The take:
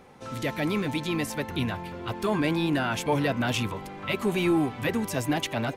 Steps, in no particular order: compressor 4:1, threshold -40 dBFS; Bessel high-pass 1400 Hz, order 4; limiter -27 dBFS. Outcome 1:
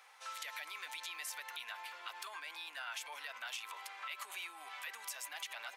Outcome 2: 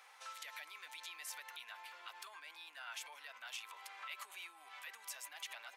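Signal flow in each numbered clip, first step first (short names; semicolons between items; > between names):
limiter > Bessel high-pass > compressor; limiter > compressor > Bessel high-pass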